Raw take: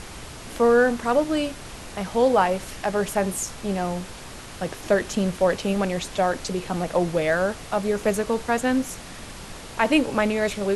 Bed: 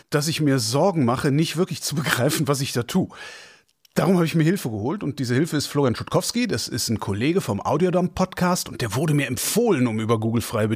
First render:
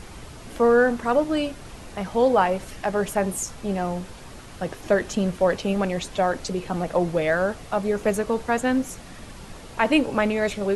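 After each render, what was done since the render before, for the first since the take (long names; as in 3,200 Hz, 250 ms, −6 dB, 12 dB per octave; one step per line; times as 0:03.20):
broadband denoise 6 dB, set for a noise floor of −39 dBFS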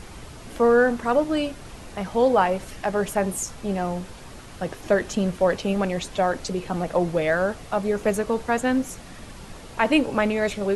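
no processing that can be heard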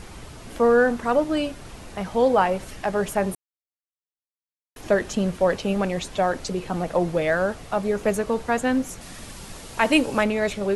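0:03.35–0:04.76: silence
0:09.01–0:10.24: high-shelf EQ 3,900 Hz +9 dB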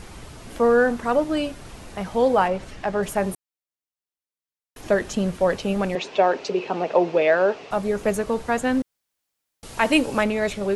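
0:02.48–0:03.03: high-frequency loss of the air 68 metres
0:05.95–0:07.71: loudspeaker in its box 260–5,800 Hz, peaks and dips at 410 Hz +10 dB, 620 Hz +4 dB, 910 Hz +5 dB, 2,600 Hz +9 dB
0:08.82–0:09.63: fill with room tone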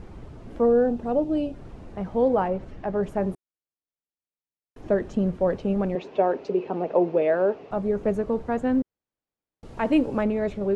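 drawn EQ curve 370 Hz 0 dB, 7,300 Hz −21 dB, 11,000 Hz −27 dB
0:00.66–0:01.54: gain on a spectral selection 920–2,400 Hz −8 dB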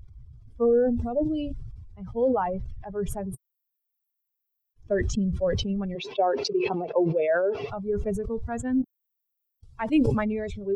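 spectral dynamics exaggerated over time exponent 2
level that may fall only so fast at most 32 dB per second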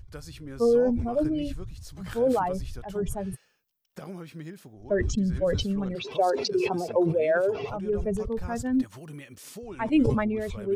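mix in bed −21.5 dB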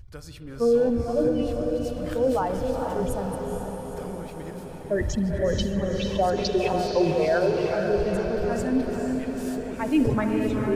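feedback delay with all-pass diffusion 468 ms, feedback 64%, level −4.5 dB
spring reverb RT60 3.6 s, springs 51 ms, chirp 30 ms, DRR 10 dB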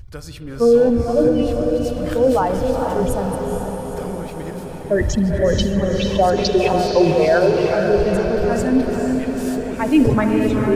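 level +7.5 dB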